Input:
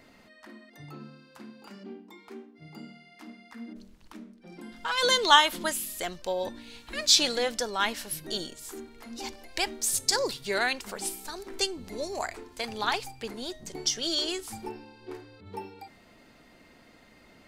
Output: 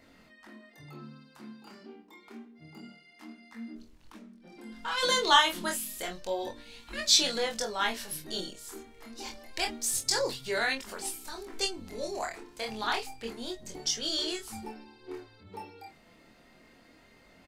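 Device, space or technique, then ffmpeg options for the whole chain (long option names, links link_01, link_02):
double-tracked vocal: -filter_complex "[0:a]asplit=2[link_01][link_02];[link_02]adelay=22,volume=-7dB[link_03];[link_01][link_03]amix=inputs=2:normalize=0,flanger=delay=22.5:depth=5.6:speed=0.28"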